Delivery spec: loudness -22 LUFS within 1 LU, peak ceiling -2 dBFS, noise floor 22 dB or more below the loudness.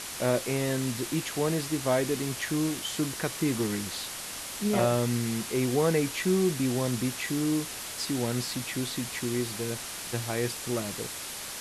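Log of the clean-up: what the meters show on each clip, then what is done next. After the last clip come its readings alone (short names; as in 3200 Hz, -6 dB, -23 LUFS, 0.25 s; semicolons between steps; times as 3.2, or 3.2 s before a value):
dropouts 2; longest dropout 2.0 ms; noise floor -39 dBFS; noise floor target -52 dBFS; loudness -29.5 LUFS; peak -11.5 dBFS; loudness target -22.0 LUFS
-> interpolate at 1.48/2.22, 2 ms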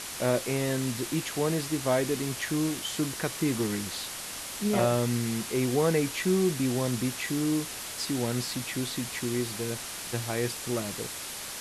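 dropouts 0; noise floor -39 dBFS; noise floor target -52 dBFS
-> noise print and reduce 13 dB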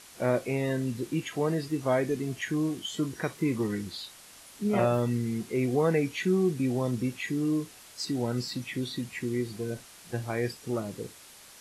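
noise floor -51 dBFS; noise floor target -52 dBFS
-> noise print and reduce 6 dB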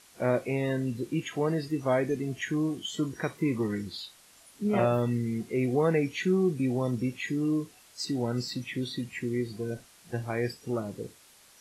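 noise floor -57 dBFS; loudness -30.0 LUFS; peak -12.0 dBFS; loudness target -22.0 LUFS
-> gain +8 dB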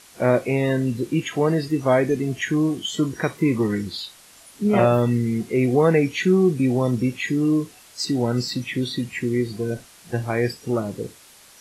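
loudness -22.0 LUFS; peak -4.0 dBFS; noise floor -49 dBFS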